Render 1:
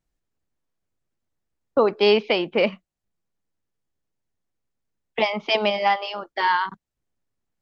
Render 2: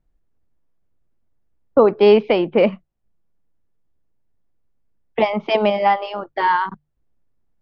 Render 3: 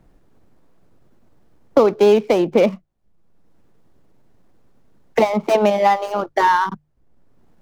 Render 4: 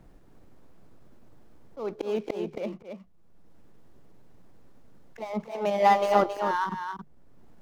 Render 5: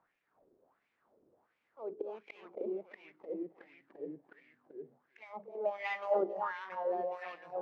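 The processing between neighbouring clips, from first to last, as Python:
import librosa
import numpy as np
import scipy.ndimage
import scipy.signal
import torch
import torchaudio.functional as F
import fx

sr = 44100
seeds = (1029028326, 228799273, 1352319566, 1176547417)

y1 = fx.lowpass(x, sr, hz=1000.0, slope=6)
y1 = fx.low_shelf(y1, sr, hz=70.0, db=9.5)
y1 = fx.hum_notches(y1, sr, base_hz=50, count=3)
y1 = y1 * librosa.db_to_amplitude(6.5)
y2 = scipy.signal.medfilt(y1, 15)
y2 = fx.band_squash(y2, sr, depth_pct=70)
y2 = y2 * librosa.db_to_amplitude(1.5)
y3 = fx.auto_swell(y2, sr, attack_ms=684.0)
y3 = y3 + 10.0 ** (-7.0 / 20.0) * np.pad(y3, (int(273 * sr / 1000.0), 0))[:len(y3)]
y4 = fx.hum_notches(y3, sr, base_hz=50, count=7)
y4 = fx.echo_pitch(y4, sr, ms=355, semitones=-2, count=3, db_per_echo=-3.0)
y4 = fx.wah_lfo(y4, sr, hz=1.4, low_hz=380.0, high_hz=2400.0, q=4.1)
y4 = y4 * librosa.db_to_amplitude(-1.5)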